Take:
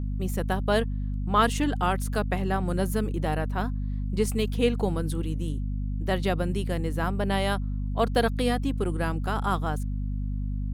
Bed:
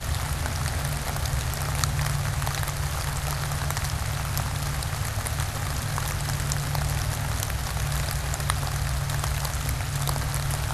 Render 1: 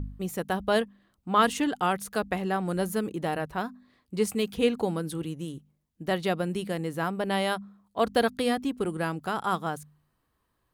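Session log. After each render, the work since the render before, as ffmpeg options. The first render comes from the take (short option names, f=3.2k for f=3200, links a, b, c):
-af "bandreject=f=50:t=h:w=4,bandreject=f=100:t=h:w=4,bandreject=f=150:t=h:w=4,bandreject=f=200:t=h:w=4,bandreject=f=250:t=h:w=4"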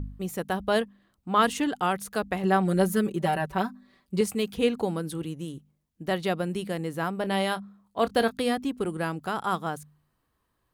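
-filter_complex "[0:a]asettb=1/sr,asplit=3[a][b][c];[a]atrim=end=2.434[d];[b]atrim=start=2.43:end=4.21,asetpts=PTS-STARTPTS,afade=t=in:d=0.004:c=qsin,afade=t=out:st=1.776:d=0.004:c=qsin,aecho=1:1:5.2:1,atrim=end_sample=78498[e];[c]atrim=start=4.206[f];[d][e]acrossfade=d=0.004:c1=hsin:c2=qsin[g];[g][f]acrossfade=d=0.004:c1=qsin:c2=hsin,asettb=1/sr,asplit=3[h][i][j];[h]atrim=end=7.204[k];[i]atrim=start=7.2:end=8.39,asetpts=PTS-STARTPTS,afade=t=in:d=0.004:c=qsin,afade=t=out:st=1.186:d=0.004:c=qsin,asplit=2[l][m];[m]adelay=26,volume=-13dB[n];[l][n]amix=inputs=2:normalize=0,atrim=end_sample=52479[o];[j]atrim=start=8.386[p];[k][o]acrossfade=d=0.004:c1=hsin:c2=qsin[q];[q][p]acrossfade=d=0.004:c1=qsin:c2=hsin"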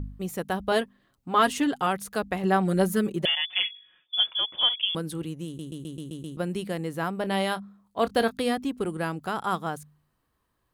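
-filter_complex "[0:a]asettb=1/sr,asplit=3[a][b][c];[a]atrim=end=0.714[d];[b]atrim=start=0.71:end=1.87,asetpts=PTS-STARTPTS,afade=t=in:d=0.004:c=qsin,afade=t=out:st=1.156:d=0.004:c=qsin,aecho=1:1:7.4:0.51,atrim=end_sample=51156[e];[c]atrim=start=1.866[f];[d][e]acrossfade=d=0.004:c1=hsin:c2=qsin[g];[g][f]acrossfade=d=0.004:c1=qsin:c2=hsin,asettb=1/sr,asplit=3[h][i][j];[h]atrim=end=3.254[k];[i]atrim=start=3.25:end=4.95,asetpts=PTS-STARTPTS,afade=t=in:d=0.004:c=qsin,afade=t=out:st=1.696:d=0.004:c=qsin,lowpass=f=3.1k:t=q:w=0.5098,lowpass=f=3.1k:t=q:w=0.6013,lowpass=f=3.1k:t=q:w=0.9,lowpass=f=3.1k:t=q:w=2.563,afreqshift=-3600[l];[j]atrim=start=4.946[m];[k][l]acrossfade=d=0.004:c1=hsin:c2=qsin[n];[n][m]acrossfade=d=0.004:c1=qsin:c2=hsin,asplit=8[o][p][q][r][s][t][u][v];[o]atrim=end=5.592[w];[p]atrim=start=5.458:end=5.592[x];[q]atrim=start=5.458:end=5.592[y];[r]atrim=start=5.458:end=5.592[z];[s]atrim=start=5.458:end=5.592[aa];[t]atrim=start=5.458:end=5.592[ab];[u]atrim=start=5.458:end=5.592[ac];[v]atrim=start=6.368[ad];[w][x]acrossfade=d=0.004:c1=hsin:c2=hsin[ae];[ae][y]acrossfade=d=0.004:c1=hsin:c2=hsin[af];[af][z]acrossfade=d=0.004:c1=hsin:c2=hsin[ag];[ag][aa]acrossfade=d=0.004:c1=hsin:c2=hsin[ah];[ah][ab]acrossfade=d=0.004:c1=hsin:c2=hsin[ai];[ai][ac]acrossfade=d=0.004:c1=hsin:c2=hsin[aj];[aj][ad]acrossfade=d=0.004:c1=hsin:c2=hsin"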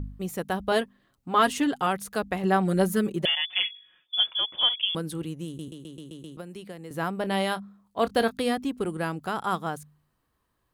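-filter_complex "[0:a]asettb=1/sr,asplit=3[a][b][c];[a]atrim=end=5.684[d];[b]atrim=start=5.68:end=6.91,asetpts=PTS-STARTPTS,afade=t=in:d=0.004:c=qsin,afade=t=out:st=1.226:d=0.004:c=qsin,acrossover=split=340|5800[e][f][g];[e]acompressor=threshold=-45dB:ratio=4[h];[f]acompressor=threshold=-42dB:ratio=4[i];[g]acompressor=threshold=-58dB:ratio=4[j];[h][i][j]amix=inputs=3:normalize=0[k];[c]atrim=start=6.906[l];[d][k]acrossfade=d=0.004:c1=hsin:c2=qsin[m];[m][l]acrossfade=d=0.004:c1=qsin:c2=hsin"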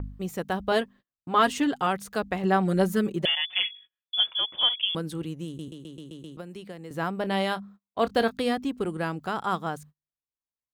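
-af "agate=range=-32dB:threshold=-47dB:ratio=16:detection=peak,equalizer=f=11k:w=2:g=-9"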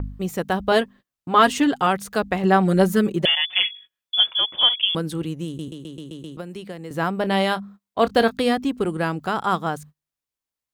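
-af "volume=6dB"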